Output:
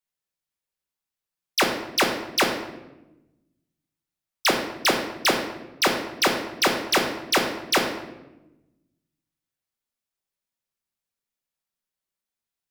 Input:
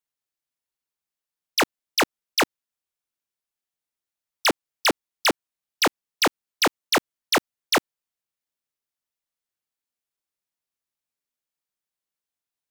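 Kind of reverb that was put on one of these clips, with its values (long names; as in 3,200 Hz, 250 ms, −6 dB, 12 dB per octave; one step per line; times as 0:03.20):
rectangular room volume 410 cubic metres, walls mixed, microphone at 1.1 metres
level −1.5 dB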